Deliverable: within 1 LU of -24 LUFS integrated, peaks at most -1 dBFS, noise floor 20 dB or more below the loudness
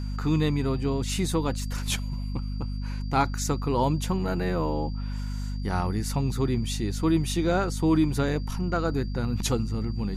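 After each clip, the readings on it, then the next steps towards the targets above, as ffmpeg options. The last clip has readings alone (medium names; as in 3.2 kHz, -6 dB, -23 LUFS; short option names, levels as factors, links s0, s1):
hum 50 Hz; highest harmonic 250 Hz; hum level -28 dBFS; steady tone 4.7 kHz; tone level -50 dBFS; loudness -27.5 LUFS; peak level -11.5 dBFS; loudness target -24.0 LUFS
-> -af "bandreject=f=50:t=h:w=6,bandreject=f=100:t=h:w=6,bandreject=f=150:t=h:w=6,bandreject=f=200:t=h:w=6,bandreject=f=250:t=h:w=6"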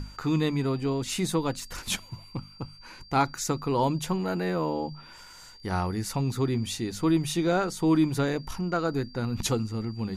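hum not found; steady tone 4.7 kHz; tone level -50 dBFS
-> -af "bandreject=f=4700:w=30"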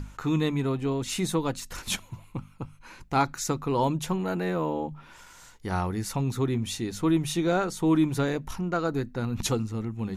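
steady tone not found; loudness -28.0 LUFS; peak level -12.5 dBFS; loudness target -24.0 LUFS
-> -af "volume=1.58"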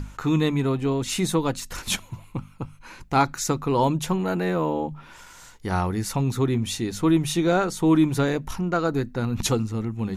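loudness -24.0 LUFS; peak level -8.5 dBFS; noise floor -48 dBFS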